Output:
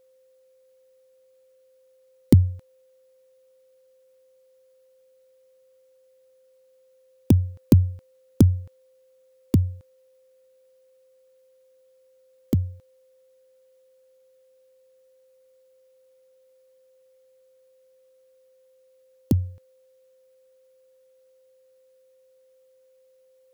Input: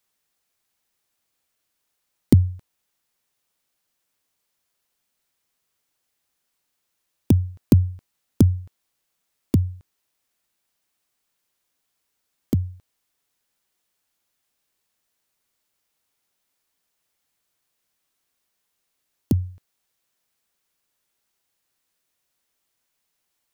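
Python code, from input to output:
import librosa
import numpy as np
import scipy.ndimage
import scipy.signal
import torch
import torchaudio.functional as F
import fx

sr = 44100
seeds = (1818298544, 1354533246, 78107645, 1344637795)

y = x + 10.0 ** (-57.0 / 20.0) * np.sin(2.0 * np.pi * 520.0 * np.arange(len(x)) / sr)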